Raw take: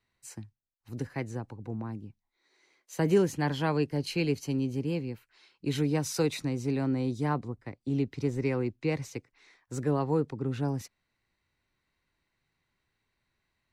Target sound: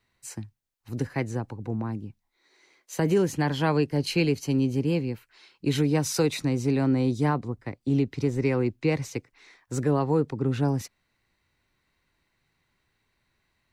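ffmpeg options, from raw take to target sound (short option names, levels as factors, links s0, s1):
-af "alimiter=limit=0.106:level=0:latency=1:release=282,volume=2"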